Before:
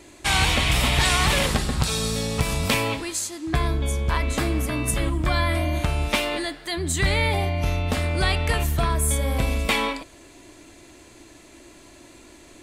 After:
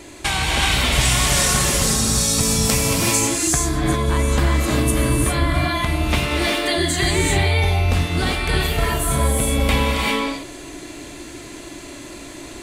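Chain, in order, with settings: 0.92–3.41 resonant high shelf 4700 Hz +8 dB, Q 1.5; compressor 4:1, threshold -28 dBFS, peak gain reduction 12 dB; non-linear reverb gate 0.42 s rising, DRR -2.5 dB; gain +7.5 dB

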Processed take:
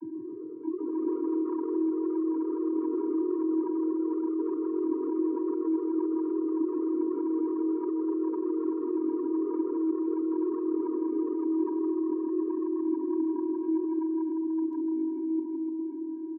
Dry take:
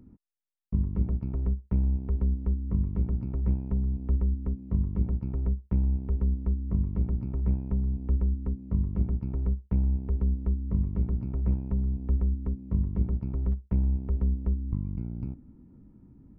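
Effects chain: local time reversal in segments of 0.157 s; LPF 1200 Hz 12 dB/oct; vocoder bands 32, square 321 Hz; on a send: bouncing-ball echo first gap 0.16 s, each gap 0.85×, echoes 5; on the sum: echoes that change speed 0.134 s, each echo +2 st, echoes 3, each echo -6 dB; diffused feedback echo 0.489 s, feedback 43%, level -13.5 dB; fast leveller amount 50%

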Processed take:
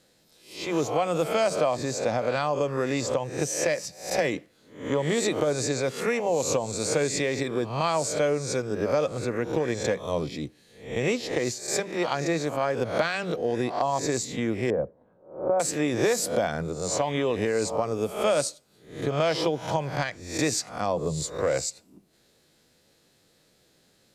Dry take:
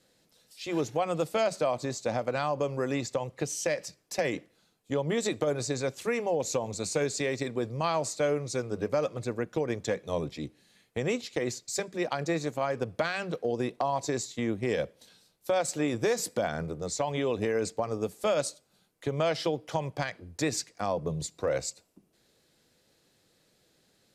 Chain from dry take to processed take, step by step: spectral swells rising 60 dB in 0.48 s; 14.7–15.6 LPF 1100 Hz 24 dB/oct; gain +2.5 dB

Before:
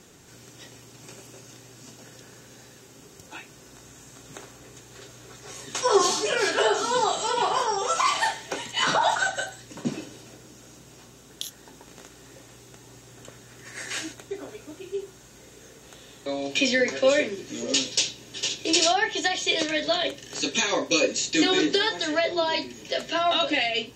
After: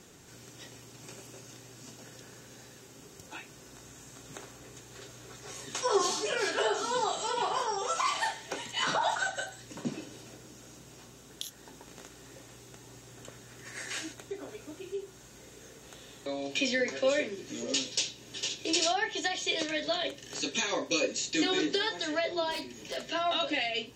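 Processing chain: in parallel at -1 dB: compressor, threshold -37 dBFS, peak gain reduction 21 dB; 22.51–22.97 on the sum: hard clip -24.5 dBFS, distortion -26 dB; gain -8 dB

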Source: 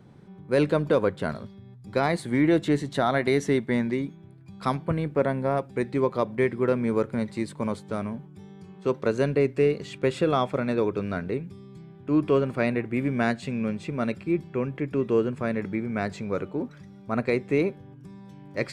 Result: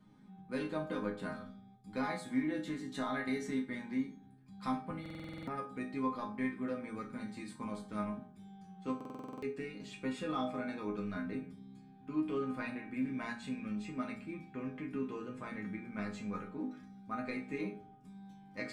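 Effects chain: bell 520 Hz -8.5 dB 0.8 oct; compressor 2:1, threshold -28 dBFS, peak gain reduction 5.5 dB; resonator bank G#3 major, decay 0.26 s; small resonant body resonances 1200/2300 Hz, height 7 dB, ringing for 95 ms; on a send at -4 dB: reverb RT60 0.50 s, pre-delay 3 ms; on the sum: stuck buffer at 5.01/8.96, samples 2048, times 9; gain +7 dB

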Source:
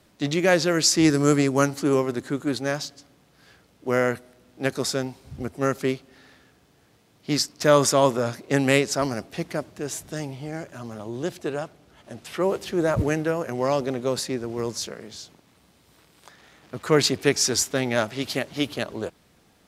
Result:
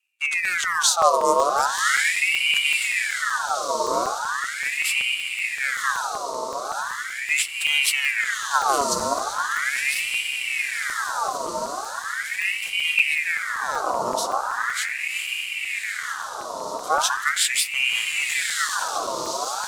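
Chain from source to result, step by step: EQ curve 150 Hz 0 dB, 2000 Hz -23 dB, 4900 Hz +8 dB; in parallel at -8 dB: soft clip -11 dBFS, distortion -12 dB; on the sum: tilt shelf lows +6 dB, about 630 Hz; gate -47 dBFS, range -18 dB; on a send: diffused feedback echo 1.095 s, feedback 72%, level -4 dB; on the sum: spring tank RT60 1.2 s, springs 31 ms, chirp 55 ms, DRR 7 dB; crackling interface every 0.19 s, samples 128, zero, from 0.45; ring modulator with a swept carrier 1700 Hz, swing 55%, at 0.39 Hz

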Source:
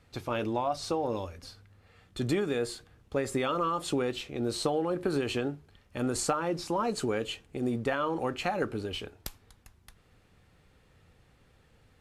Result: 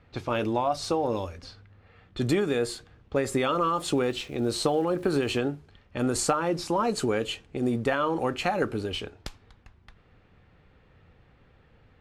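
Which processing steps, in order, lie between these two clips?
low-pass opened by the level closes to 2700 Hz, open at -30 dBFS; 3.63–5.37 crackle 400/s -50 dBFS; gain +4 dB

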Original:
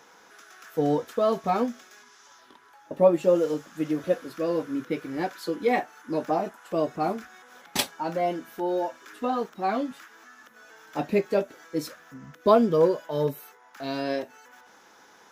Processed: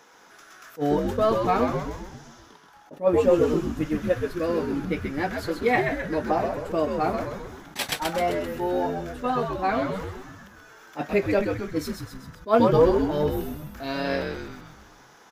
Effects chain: dynamic EQ 1800 Hz, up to +6 dB, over -43 dBFS, Q 1; frequency-shifting echo 0.13 s, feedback 56%, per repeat -97 Hz, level -5 dB; attack slew limiter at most 330 dB/s

